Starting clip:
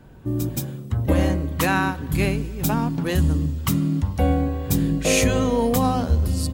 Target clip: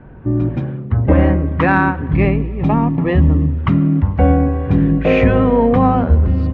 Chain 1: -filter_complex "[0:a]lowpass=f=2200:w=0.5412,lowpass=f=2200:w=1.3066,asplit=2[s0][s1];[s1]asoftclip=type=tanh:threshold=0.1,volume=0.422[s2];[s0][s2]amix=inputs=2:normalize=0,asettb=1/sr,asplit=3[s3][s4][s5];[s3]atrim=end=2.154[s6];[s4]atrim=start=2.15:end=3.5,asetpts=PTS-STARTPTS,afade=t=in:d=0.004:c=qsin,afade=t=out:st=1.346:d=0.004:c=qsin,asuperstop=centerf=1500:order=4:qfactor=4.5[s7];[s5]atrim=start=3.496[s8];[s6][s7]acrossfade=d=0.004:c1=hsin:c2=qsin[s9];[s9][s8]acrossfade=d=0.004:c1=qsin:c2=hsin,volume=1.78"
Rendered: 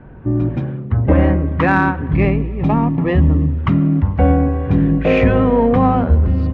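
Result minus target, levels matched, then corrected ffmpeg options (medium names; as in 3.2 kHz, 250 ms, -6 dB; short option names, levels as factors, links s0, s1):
saturation: distortion +7 dB
-filter_complex "[0:a]lowpass=f=2200:w=0.5412,lowpass=f=2200:w=1.3066,asplit=2[s0][s1];[s1]asoftclip=type=tanh:threshold=0.211,volume=0.422[s2];[s0][s2]amix=inputs=2:normalize=0,asettb=1/sr,asplit=3[s3][s4][s5];[s3]atrim=end=2.154[s6];[s4]atrim=start=2.15:end=3.5,asetpts=PTS-STARTPTS,afade=t=in:d=0.004:c=qsin,afade=t=out:st=1.346:d=0.004:c=qsin,asuperstop=centerf=1500:order=4:qfactor=4.5[s7];[s5]atrim=start=3.496[s8];[s6][s7]acrossfade=d=0.004:c1=hsin:c2=qsin[s9];[s9][s8]acrossfade=d=0.004:c1=qsin:c2=hsin,volume=1.78"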